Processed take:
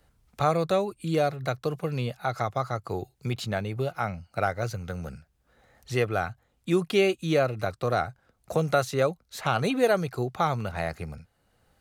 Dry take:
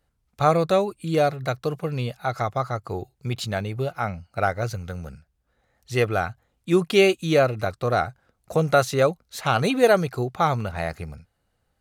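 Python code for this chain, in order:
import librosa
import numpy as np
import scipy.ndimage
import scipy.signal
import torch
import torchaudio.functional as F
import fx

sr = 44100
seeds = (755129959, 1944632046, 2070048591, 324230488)

y = fx.band_squash(x, sr, depth_pct=40)
y = y * 10.0 ** (-4.0 / 20.0)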